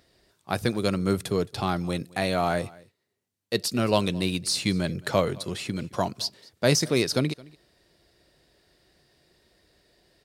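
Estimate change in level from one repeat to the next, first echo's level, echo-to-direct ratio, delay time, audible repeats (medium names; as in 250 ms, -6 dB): no regular repeats, -23.0 dB, -23.0 dB, 218 ms, 1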